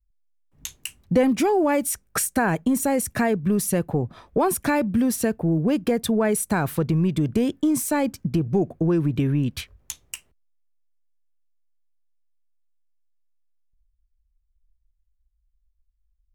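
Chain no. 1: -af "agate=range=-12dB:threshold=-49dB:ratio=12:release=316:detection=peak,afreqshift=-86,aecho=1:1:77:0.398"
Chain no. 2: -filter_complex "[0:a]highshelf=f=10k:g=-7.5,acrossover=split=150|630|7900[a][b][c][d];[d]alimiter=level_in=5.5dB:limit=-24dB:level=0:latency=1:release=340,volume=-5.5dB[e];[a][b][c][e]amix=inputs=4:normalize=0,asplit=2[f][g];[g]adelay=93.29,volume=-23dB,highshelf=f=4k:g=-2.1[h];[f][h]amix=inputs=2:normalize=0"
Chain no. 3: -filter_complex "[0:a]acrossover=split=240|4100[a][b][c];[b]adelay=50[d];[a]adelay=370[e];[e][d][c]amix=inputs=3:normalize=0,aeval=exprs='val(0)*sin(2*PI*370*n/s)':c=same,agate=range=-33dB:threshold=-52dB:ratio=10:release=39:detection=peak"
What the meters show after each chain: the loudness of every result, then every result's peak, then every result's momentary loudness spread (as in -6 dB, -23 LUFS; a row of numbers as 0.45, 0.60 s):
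-22.5, -23.0, -27.5 LUFS; -8.0, -8.5, -10.5 dBFS; 14, 16, 10 LU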